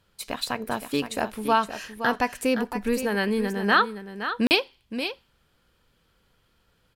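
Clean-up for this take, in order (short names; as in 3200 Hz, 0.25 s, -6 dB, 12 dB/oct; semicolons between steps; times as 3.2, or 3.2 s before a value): interpolate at 4.47, 39 ms; inverse comb 0.518 s -10 dB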